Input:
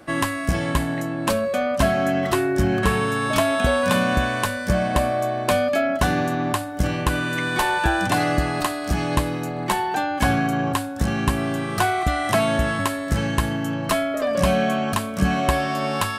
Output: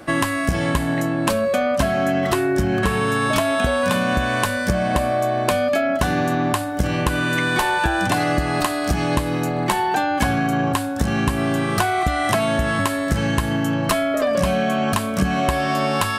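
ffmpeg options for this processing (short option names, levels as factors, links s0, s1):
-af "acompressor=threshold=0.0794:ratio=6,volume=2"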